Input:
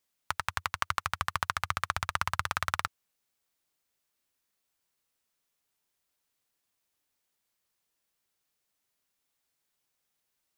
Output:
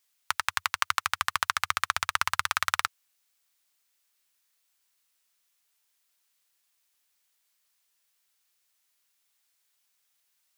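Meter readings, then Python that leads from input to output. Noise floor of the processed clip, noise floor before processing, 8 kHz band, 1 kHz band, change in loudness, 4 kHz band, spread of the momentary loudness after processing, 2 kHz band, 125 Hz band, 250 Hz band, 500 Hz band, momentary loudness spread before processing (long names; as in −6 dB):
−74 dBFS, −82 dBFS, +7.5 dB, +3.0 dB, +4.5 dB, +7.0 dB, 4 LU, +5.0 dB, −9.0 dB, can't be measured, −2.0 dB, 4 LU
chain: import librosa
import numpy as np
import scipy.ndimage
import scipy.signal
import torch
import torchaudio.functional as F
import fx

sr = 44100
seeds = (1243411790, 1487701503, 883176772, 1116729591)

y = fx.tilt_shelf(x, sr, db=-8.5, hz=690.0)
y = F.gain(torch.from_numpy(y), -1.0).numpy()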